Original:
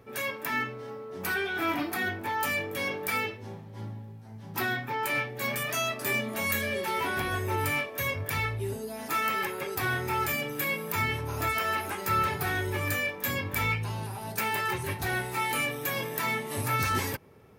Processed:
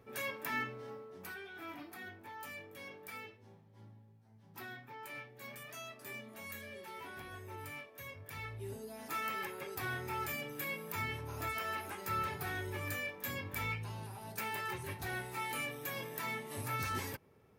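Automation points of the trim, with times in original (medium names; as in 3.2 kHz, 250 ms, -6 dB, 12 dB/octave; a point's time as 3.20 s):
0.94 s -7 dB
1.37 s -18 dB
8.22 s -18 dB
8.74 s -10 dB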